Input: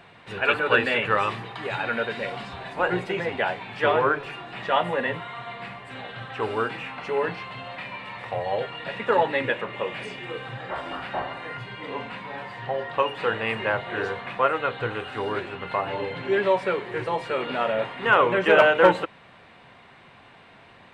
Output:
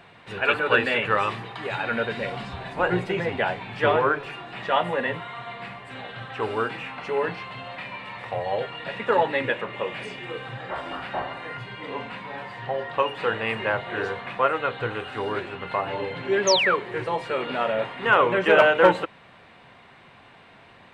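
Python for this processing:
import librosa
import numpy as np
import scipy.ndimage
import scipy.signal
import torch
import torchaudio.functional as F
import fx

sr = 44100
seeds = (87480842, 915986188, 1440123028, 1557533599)

y = fx.low_shelf(x, sr, hz=190.0, db=7.5, at=(1.91, 3.97))
y = fx.spec_paint(y, sr, seeds[0], shape='fall', start_s=16.47, length_s=0.29, low_hz=980.0, high_hz=6800.0, level_db=-22.0)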